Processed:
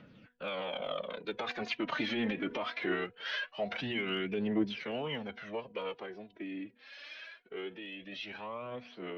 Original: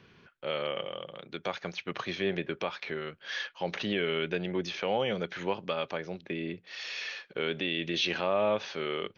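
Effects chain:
source passing by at 0:01.99, 17 m/s, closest 13 metres
high-frequency loss of the air 150 metres
hum removal 198.5 Hz, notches 4
brickwall limiter −30.5 dBFS, peak gain reduction 11 dB
phase-vocoder pitch shift with formants kept +3.5 semitones
phase shifter 0.22 Hz, delay 3.8 ms, feedback 53%
level +7 dB

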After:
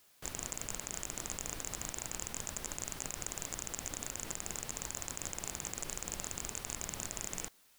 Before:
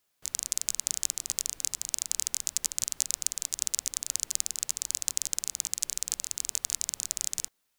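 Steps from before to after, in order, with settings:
in parallel at +3 dB: compressor whose output falls as the input rises −33 dBFS
on the sum: slew-rate limiting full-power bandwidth 320 Hz
level +1.5 dB

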